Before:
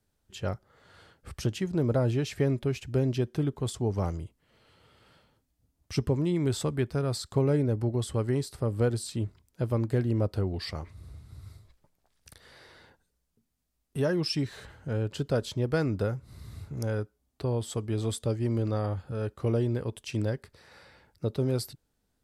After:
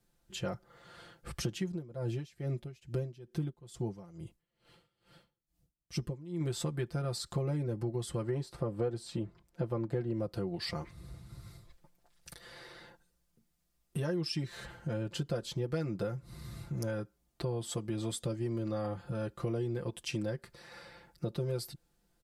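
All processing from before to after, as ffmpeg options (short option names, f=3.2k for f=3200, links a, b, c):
-filter_complex "[0:a]asettb=1/sr,asplit=3[a][b][c];[a]atrim=end=1.684[d];[b]atrim=start=1.68:end=6.41,asetpts=PTS-STARTPTS,afade=t=in:d=0.004:c=qsin,afade=t=out:st=4.726:d=0.004:c=qsin,equalizer=f=1.2k:w=0.51:g=-3.5,aeval=exprs='val(0)*pow(10,-23*(0.5-0.5*cos(2*PI*2.3*n/s))/20)':c=same[e];[c]atrim=start=6.406[f];[d][e]acrossfade=d=0.004:c1=hsin:c2=qsin[g];[g][f]acrossfade=d=0.004:c1=qsin:c2=hsin,asettb=1/sr,asplit=3[h][i][j];[h]atrim=end=8.224[k];[i]atrim=start=8.22:end=10.13,asetpts=PTS-STARTPTS,afade=t=in:d=0.004:c=qsin,afade=t=out:st=1.906:d=0.004:c=qsin,lowpass=f=3.2k:p=1,equalizer=f=660:t=o:w=2.1:g=4.5[l];[j]atrim=start=10.126[m];[k][l]acrossfade=d=0.004:c1=hsin:c2=qsin[n];[n][m]acrossfade=d=0.004:c1=qsin:c2=hsin,aecho=1:1:5.8:0.88,acompressor=threshold=-34dB:ratio=3"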